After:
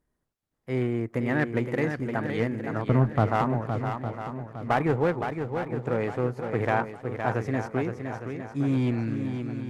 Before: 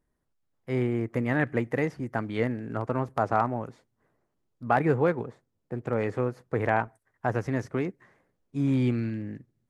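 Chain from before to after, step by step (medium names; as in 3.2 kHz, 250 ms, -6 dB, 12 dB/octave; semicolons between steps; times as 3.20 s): 2.87–3.30 s: tone controls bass +14 dB, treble -15 dB; one-sided clip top -22.5 dBFS, bottom -9.5 dBFS; shuffle delay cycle 859 ms, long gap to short 1.5:1, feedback 38%, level -7 dB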